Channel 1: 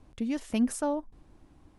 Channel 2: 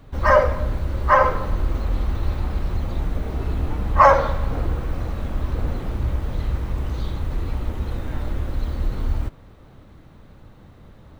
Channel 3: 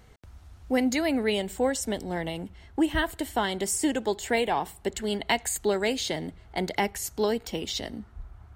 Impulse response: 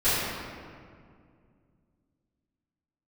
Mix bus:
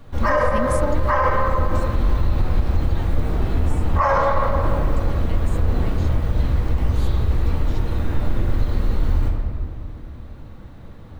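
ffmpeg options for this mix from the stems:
-filter_complex "[0:a]volume=2.5dB[link_01];[1:a]volume=0dB,asplit=2[link_02][link_03];[link_03]volume=-15dB[link_04];[2:a]volume=-17.5dB[link_05];[3:a]atrim=start_sample=2205[link_06];[link_04][link_06]afir=irnorm=-1:irlink=0[link_07];[link_01][link_02][link_05][link_07]amix=inputs=4:normalize=0,alimiter=limit=-9dB:level=0:latency=1:release=77"

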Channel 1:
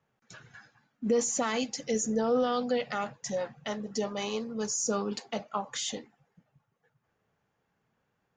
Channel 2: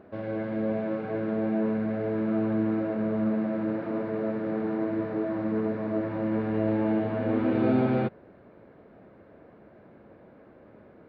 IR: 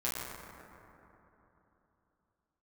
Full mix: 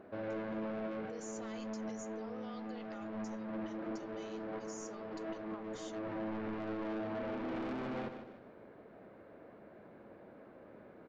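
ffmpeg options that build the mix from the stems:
-filter_complex "[0:a]highpass=frequency=480:poles=1,volume=-19.5dB,asplit=2[link_01][link_02];[1:a]asoftclip=type=tanh:threshold=-31dB,volume=-2dB,asplit=2[link_03][link_04];[link_04]volume=-12dB[link_05];[link_02]apad=whole_len=488861[link_06];[link_03][link_06]sidechaincompress=threshold=-58dB:ratio=5:attack=5.6:release=326[link_07];[link_05]aecho=0:1:151|302|453|604|755:1|0.39|0.152|0.0593|0.0231[link_08];[link_01][link_07][link_08]amix=inputs=3:normalize=0,equalizer=frequency=77:width_type=o:width=2.5:gain=-7,alimiter=level_in=9.5dB:limit=-24dB:level=0:latency=1:release=43,volume=-9.5dB"

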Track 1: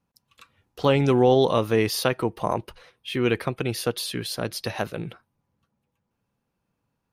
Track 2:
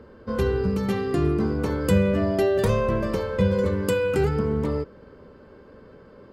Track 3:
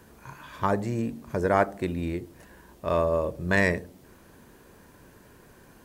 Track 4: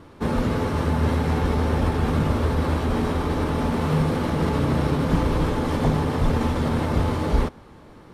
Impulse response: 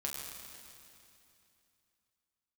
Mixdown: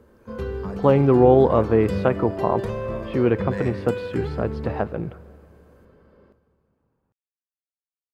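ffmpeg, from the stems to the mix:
-filter_complex "[0:a]lowpass=1200,volume=3dB,asplit=2[link_01][link_02];[link_02]volume=-18dB[link_03];[1:a]highshelf=frequency=5500:gain=-10,volume=-9.5dB,asplit=2[link_04][link_05];[link_05]volume=-7.5dB[link_06];[2:a]volume=-18dB,asplit=2[link_07][link_08];[link_08]volume=-5dB[link_09];[4:a]atrim=start_sample=2205[link_10];[link_03][link_06][link_09]amix=inputs=3:normalize=0[link_11];[link_11][link_10]afir=irnorm=-1:irlink=0[link_12];[link_01][link_04][link_07][link_12]amix=inputs=4:normalize=0"

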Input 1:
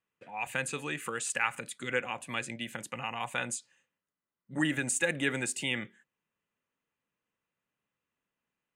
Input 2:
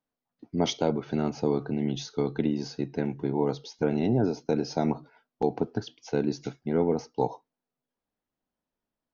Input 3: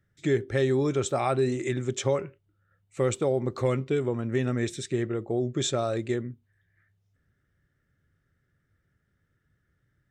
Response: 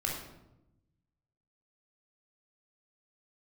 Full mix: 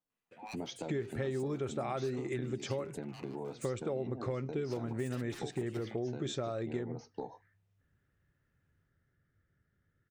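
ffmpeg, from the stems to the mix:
-filter_complex "[0:a]aeval=exprs='0.0316*(abs(mod(val(0)/0.0316+3,4)-2)-1)':channel_layout=same,acompressor=threshold=-38dB:ratio=6,adelay=100,volume=-1.5dB[link_01];[1:a]volume=-3dB,asplit=2[link_02][link_03];[2:a]aemphasis=mode=reproduction:type=50fm,adelay=650,volume=-4dB[link_04];[link_03]apad=whole_len=390704[link_05];[link_01][link_05]sidechaincompress=threshold=-33dB:ratio=8:attack=6.6:release=184[link_06];[link_06][link_02]amix=inputs=2:normalize=0,flanger=delay=5.7:depth=6.6:regen=-41:speed=1.3:shape=sinusoidal,acompressor=threshold=-37dB:ratio=6,volume=0dB[link_07];[link_04][link_07]amix=inputs=2:normalize=0,acompressor=threshold=-33dB:ratio=4"

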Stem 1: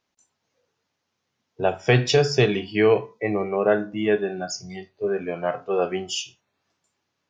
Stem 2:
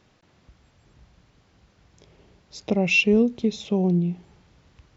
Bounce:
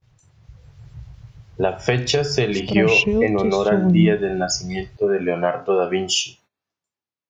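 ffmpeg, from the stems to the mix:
ffmpeg -i stem1.wav -i stem2.wav -filter_complex "[0:a]acompressor=threshold=-25dB:ratio=6,volume=1.5dB[link_01];[1:a]lowshelf=frequency=170:width_type=q:width=3:gain=11,acrossover=split=2100[link_02][link_03];[link_02]aeval=exprs='val(0)*(1-0.5/2+0.5/2*cos(2*PI*7.2*n/s))':channel_layout=same[link_04];[link_03]aeval=exprs='val(0)*(1-0.5/2-0.5/2*cos(2*PI*7.2*n/s))':channel_layout=same[link_05];[link_04][link_05]amix=inputs=2:normalize=0,volume=-3dB[link_06];[link_01][link_06]amix=inputs=2:normalize=0,agate=range=-21dB:threshold=-58dB:ratio=16:detection=peak,dynaudnorm=framelen=170:gausssize=7:maxgain=8.5dB" out.wav

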